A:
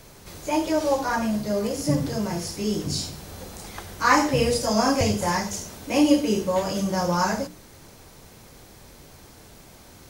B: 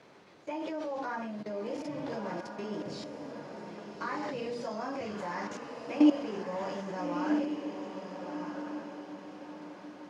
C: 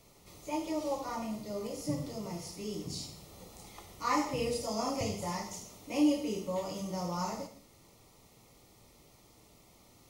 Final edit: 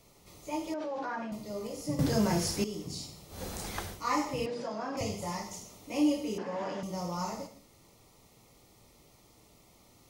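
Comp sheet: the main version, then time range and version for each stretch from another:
C
0:00.74–0:01.32: punch in from B
0:01.99–0:02.64: punch in from A
0:03.37–0:03.93: punch in from A, crossfade 0.16 s
0:04.46–0:04.97: punch in from B
0:06.38–0:06.83: punch in from B

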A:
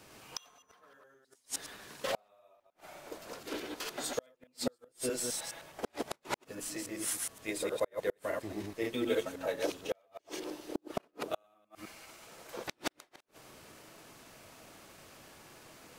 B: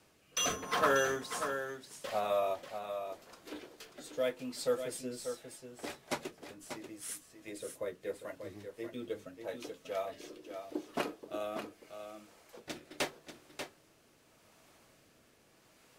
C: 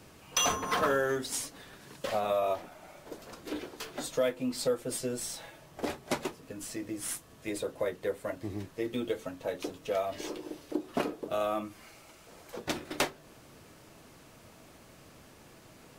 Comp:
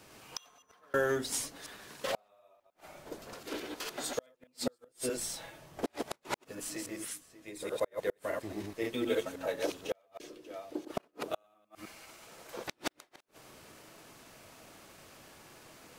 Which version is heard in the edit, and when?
A
0:00.94–0:01.56: punch in from C
0:02.88–0:03.34: punch in from C
0:05.17–0:05.86: punch in from C
0:07.06–0:07.62: punch in from B, crossfade 0.24 s
0:10.20–0:10.85: punch in from B

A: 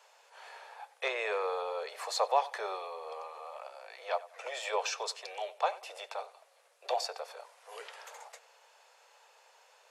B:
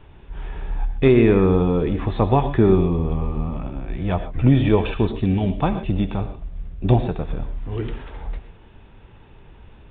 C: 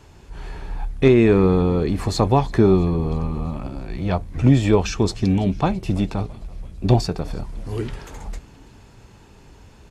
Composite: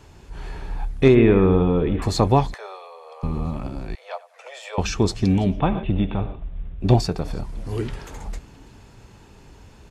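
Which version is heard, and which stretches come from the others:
C
0:01.15–0:02.02: punch in from B
0:02.54–0:03.23: punch in from A
0:03.95–0:04.78: punch in from A
0:05.53–0:06.86: punch in from B, crossfade 0.16 s

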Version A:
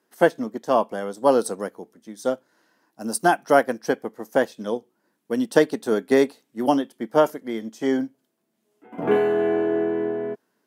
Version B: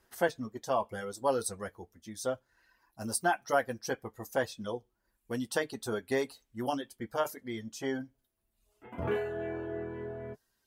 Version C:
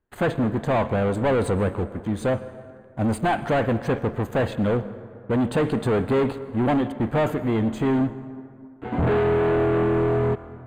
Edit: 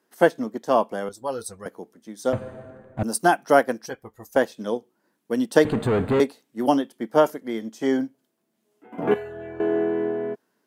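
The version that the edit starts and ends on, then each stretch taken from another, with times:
A
0:01.09–0:01.66: punch in from B
0:02.33–0:03.03: punch in from C
0:03.86–0:04.36: punch in from B
0:05.65–0:06.20: punch in from C
0:09.14–0:09.60: punch in from B

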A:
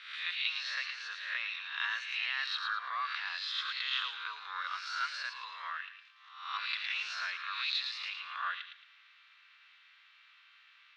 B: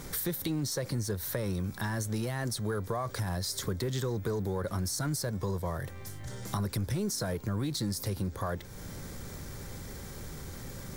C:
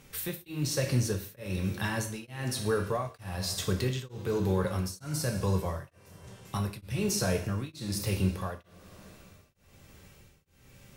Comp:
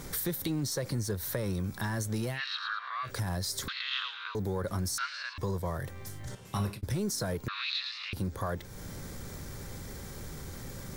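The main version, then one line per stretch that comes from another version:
B
0:02.36–0:03.07: punch in from A, crossfade 0.10 s
0:03.68–0:04.35: punch in from A
0:04.98–0:05.38: punch in from A
0:06.35–0:06.83: punch in from C
0:07.48–0:08.13: punch in from A

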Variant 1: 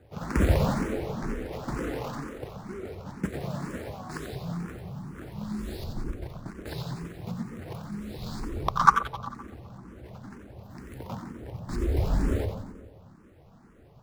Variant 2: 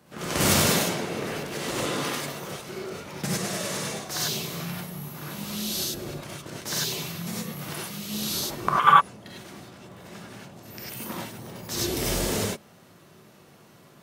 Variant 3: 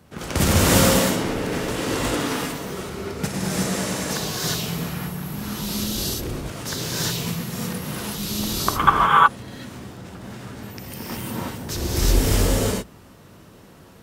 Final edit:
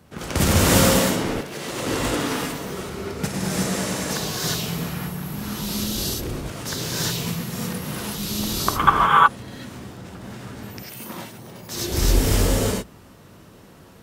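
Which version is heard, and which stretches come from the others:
3
0:01.41–0:01.86: punch in from 2
0:10.83–0:11.92: punch in from 2
not used: 1

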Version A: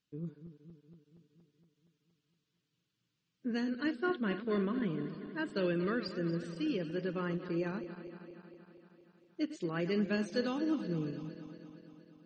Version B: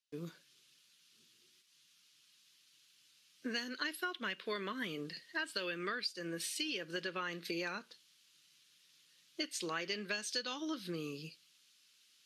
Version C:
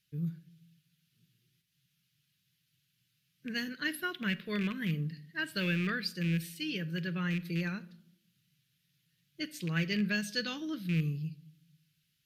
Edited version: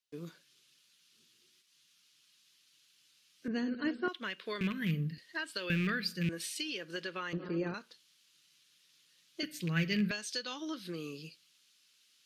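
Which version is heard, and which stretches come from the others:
B
0:03.48–0:04.08: punch in from A
0:04.61–0:05.18: punch in from C
0:05.70–0:06.29: punch in from C
0:07.33–0:07.74: punch in from A
0:09.43–0:10.11: punch in from C

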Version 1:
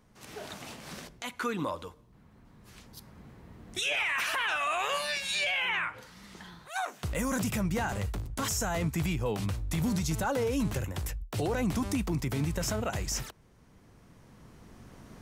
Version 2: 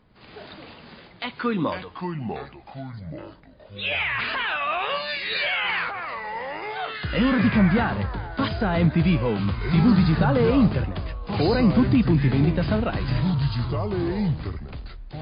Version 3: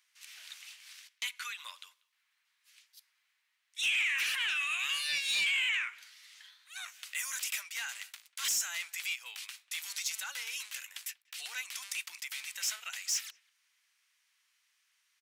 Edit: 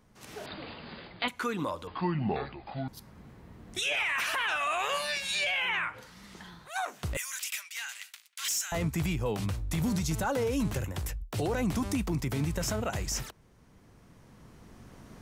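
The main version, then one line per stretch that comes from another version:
1
0:00.46–0:01.28: punch in from 2
0:01.87–0:02.88: punch in from 2
0:07.17–0:08.72: punch in from 3

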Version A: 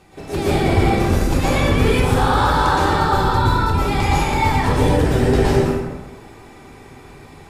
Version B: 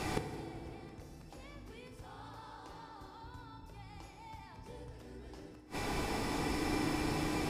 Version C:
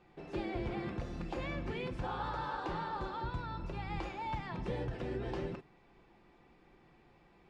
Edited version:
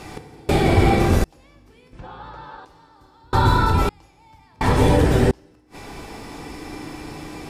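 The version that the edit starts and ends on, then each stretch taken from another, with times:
B
0:00.49–0:01.24: punch in from A
0:01.93–0:02.65: punch in from C
0:03.33–0:03.89: punch in from A
0:04.61–0:05.31: punch in from A

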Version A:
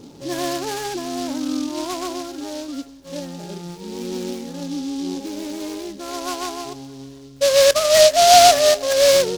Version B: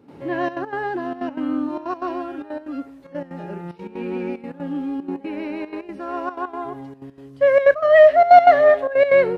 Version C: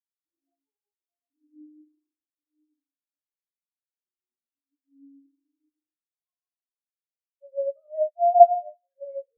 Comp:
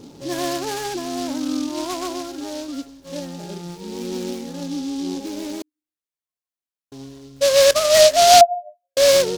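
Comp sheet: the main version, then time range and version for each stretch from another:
A
0:05.62–0:06.92: punch in from C
0:08.41–0:08.97: punch in from C
not used: B

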